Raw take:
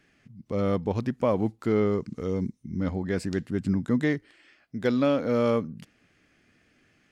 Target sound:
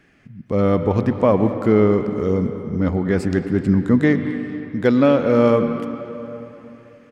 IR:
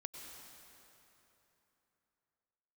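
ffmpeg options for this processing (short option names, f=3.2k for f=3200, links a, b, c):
-filter_complex "[0:a]asplit=2[a][b];[b]adelay=220,highpass=300,lowpass=3.4k,asoftclip=type=hard:threshold=-20.5dB,volume=-16dB[c];[a][c]amix=inputs=2:normalize=0,asplit=2[d][e];[1:a]atrim=start_sample=2205,lowpass=3k[f];[e][f]afir=irnorm=-1:irlink=0,volume=3.5dB[g];[d][g]amix=inputs=2:normalize=0,volume=3.5dB"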